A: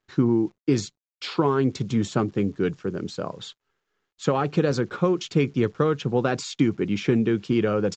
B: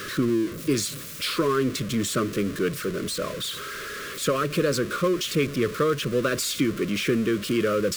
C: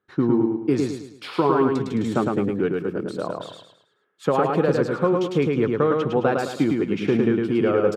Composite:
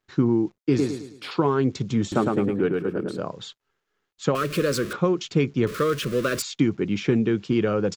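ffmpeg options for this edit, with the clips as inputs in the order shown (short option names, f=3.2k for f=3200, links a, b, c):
-filter_complex "[2:a]asplit=2[a][b];[1:a]asplit=2[c][d];[0:a]asplit=5[e][f][g][h][i];[e]atrim=end=0.782[j];[a]atrim=start=0.778:end=1.312[k];[f]atrim=start=1.308:end=2.122[l];[b]atrim=start=2.118:end=3.182[m];[g]atrim=start=3.178:end=4.352[n];[c]atrim=start=4.348:end=4.932[o];[h]atrim=start=4.928:end=5.672[p];[d]atrim=start=5.668:end=6.422[q];[i]atrim=start=6.418[r];[j][k]acrossfade=d=0.004:c1=hsin:c2=hsin[s];[s][l]acrossfade=d=0.004:c1=hsin:c2=hsin[t];[t][m]acrossfade=d=0.004:c1=hsin:c2=hsin[u];[u][n]acrossfade=d=0.004:c1=hsin:c2=hsin[v];[v][o]acrossfade=d=0.004:c1=hsin:c2=hsin[w];[w][p]acrossfade=d=0.004:c1=hsin:c2=hsin[x];[x][q]acrossfade=d=0.004:c1=hsin:c2=hsin[y];[y][r]acrossfade=d=0.004:c1=hsin:c2=hsin"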